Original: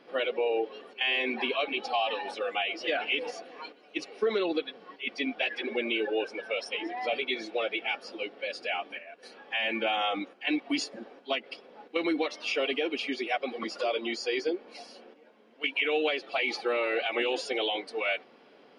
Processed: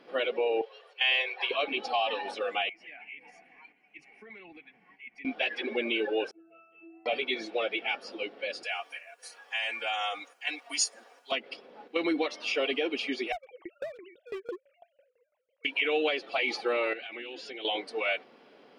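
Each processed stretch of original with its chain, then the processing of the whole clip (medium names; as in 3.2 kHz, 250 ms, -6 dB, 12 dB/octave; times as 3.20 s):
0.61–1.51 s: steep high-pass 450 Hz 48 dB/octave + peaking EQ 4.8 kHz +4 dB 2.3 oct + upward expansion, over -37 dBFS
2.69–5.25 s: FFT filter 130 Hz 0 dB, 540 Hz -24 dB, 780 Hz -8 dB, 1.3 kHz -18 dB, 2.2 kHz +3 dB, 3.8 kHz -26 dB, 7.4 kHz -12 dB + compression 2:1, threshold -51 dBFS
6.31–7.06 s: Savitzky-Golay filter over 25 samples + pitch-class resonator E, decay 0.74 s + compression 4:1, threshold -48 dBFS
8.63–11.32 s: high-pass 900 Hz + resonant high shelf 5.3 kHz +12.5 dB, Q 1.5 + comb 4.2 ms, depth 39%
13.32–15.65 s: formants replaced by sine waves + overload inside the chain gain 29.5 dB + sawtooth tremolo in dB decaying 6 Hz, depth 21 dB
16.93–17.65 s: low-pass 4.1 kHz + high-order bell 740 Hz -8 dB + compression 4:1, threshold -39 dBFS
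whole clip: none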